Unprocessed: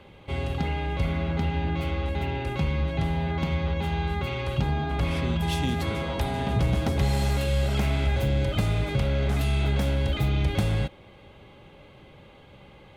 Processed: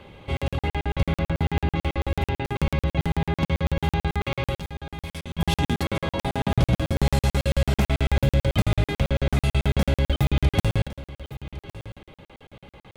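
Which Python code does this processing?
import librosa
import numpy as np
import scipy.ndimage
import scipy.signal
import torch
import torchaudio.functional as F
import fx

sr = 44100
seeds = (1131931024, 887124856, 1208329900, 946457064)

y = fx.pre_emphasis(x, sr, coefficient=0.8, at=(4.57, 5.39))
y = y + 10.0 ** (-16.5 / 20.0) * np.pad(y, (int(1109 * sr / 1000.0), 0))[:len(y)]
y = fx.buffer_crackle(y, sr, first_s=0.37, period_s=0.11, block=2048, kind='zero')
y = y * librosa.db_to_amplitude(4.0)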